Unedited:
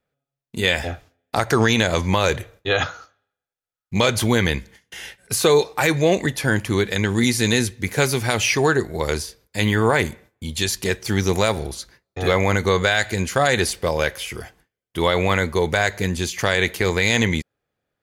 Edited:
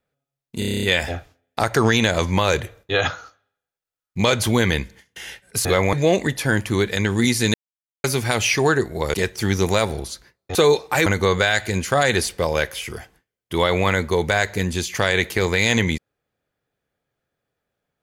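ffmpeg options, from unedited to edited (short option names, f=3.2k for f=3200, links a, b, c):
-filter_complex "[0:a]asplit=16[a][b][c][d][e][f][g][h][i][j][k][l][m][n][o][p];[a]atrim=end=0.622[q];[b]atrim=start=0.588:end=0.622[r];[c]atrim=start=0.588:end=0.622[s];[d]atrim=start=0.588:end=0.622[t];[e]atrim=start=0.588:end=0.622[u];[f]atrim=start=0.588:end=0.622[v];[g]atrim=start=0.588:end=0.622[w];[h]atrim=start=0.588:end=0.622[x];[i]atrim=start=0.588:end=5.412[y];[j]atrim=start=12.218:end=12.502[z];[k]atrim=start=5.918:end=7.53,asetpts=PTS-STARTPTS,afade=t=out:st=1.608:d=0.004:c=hsin[aa];[l]atrim=start=7.53:end=8.03,asetpts=PTS-STARTPTS,volume=0[ab];[m]atrim=start=8.03:end=9.132,asetpts=PTS-STARTPTS,afade=t=in:d=0.004:c=hsin[ac];[n]atrim=start=10.808:end=12.222[ad];[o]atrim=start=5.408:end=5.922[ae];[p]atrim=start=12.498[af];[q][r]acrossfade=d=0.004:c1=hsin:c2=hsin[ag];[ag][s]acrossfade=d=0.004:c1=hsin:c2=hsin[ah];[ah][t]acrossfade=d=0.004:c1=hsin:c2=hsin[ai];[ai][u]acrossfade=d=0.004:c1=hsin:c2=hsin[aj];[aj][v]acrossfade=d=0.004:c1=hsin:c2=hsin[ak];[ak][w]acrossfade=d=0.004:c1=hsin:c2=hsin[al];[al][x]acrossfade=d=0.004:c1=hsin:c2=hsin[am];[am][y]acrossfade=d=0.004:c1=hsin:c2=hsin[an];[an][z]acrossfade=d=0.004:c1=hsin:c2=hsin[ao];[aa][ab][ac]concat=n=3:v=0:a=1[ap];[ao][ap]acrossfade=d=0.004:c1=hsin:c2=hsin[aq];[aq][ad]acrossfade=d=0.004:c1=hsin:c2=hsin[ar];[ar][ae]acrossfade=d=0.004:c1=hsin:c2=hsin[as];[as][af]acrossfade=d=0.004:c1=hsin:c2=hsin"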